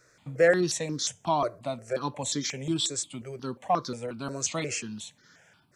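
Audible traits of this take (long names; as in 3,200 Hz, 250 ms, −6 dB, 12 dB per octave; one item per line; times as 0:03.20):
notches that jump at a steady rate 5.6 Hz 840–2,600 Hz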